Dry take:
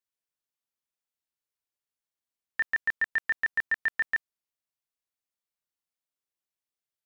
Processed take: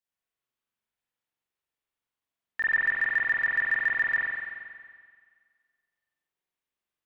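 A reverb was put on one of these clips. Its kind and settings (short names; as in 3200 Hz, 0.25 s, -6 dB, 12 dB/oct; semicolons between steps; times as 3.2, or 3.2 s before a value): spring tank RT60 1.8 s, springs 44 ms, chirp 75 ms, DRR -8 dB; gain -3 dB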